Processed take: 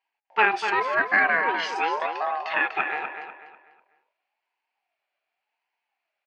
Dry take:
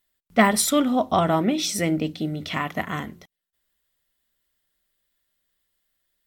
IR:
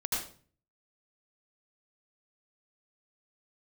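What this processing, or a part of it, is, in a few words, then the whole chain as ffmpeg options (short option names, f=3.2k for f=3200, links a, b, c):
voice changer toy: -filter_complex "[0:a]asettb=1/sr,asplit=3[a][b][c];[a]atrim=end=1.554[d];[b]atrim=start=1.55:end=2.84,asetpts=PTS-STARTPTS,afade=t=in:d=0.004:c=qsin,afade=t=out:st=1.286:d=0.004:c=qsin,aecho=1:1:1.1:0.85,atrim=end_sample=56889[e];[c]atrim=start=2.836[f];[d][e]acrossfade=d=0.004:c1=hsin:c2=qsin[g];[g][f]acrossfade=d=0.004:c1=qsin:c2=hsin,aeval=exprs='val(0)*sin(2*PI*770*n/s+770*0.25/0.88*sin(2*PI*0.88*n/s))':c=same,highpass=470,equalizer=f=520:t=q:w=4:g=-5,equalizer=f=740:t=q:w=4:g=6,equalizer=f=1.2k:t=q:w=4:g=-4,equalizer=f=1.7k:t=q:w=4:g=7,equalizer=f=2.3k:t=q:w=4:g=5,equalizer=f=3.8k:t=q:w=4:g=-8,lowpass=f=4k:w=0.5412,lowpass=f=4k:w=1.3066,asplit=2[h][i];[i]adelay=247,lowpass=f=4.8k:p=1,volume=-7.5dB,asplit=2[j][k];[k]adelay=247,lowpass=f=4.8k:p=1,volume=0.34,asplit=2[l][m];[m]adelay=247,lowpass=f=4.8k:p=1,volume=0.34,asplit=2[n][o];[o]adelay=247,lowpass=f=4.8k:p=1,volume=0.34[p];[h][j][l][n][p]amix=inputs=5:normalize=0"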